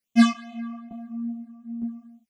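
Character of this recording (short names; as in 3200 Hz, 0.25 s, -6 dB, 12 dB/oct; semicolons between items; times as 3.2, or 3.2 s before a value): phasing stages 8, 2.4 Hz, lowest notch 500–1600 Hz; tremolo saw down 1.1 Hz, depth 60%; a shimmering, thickened sound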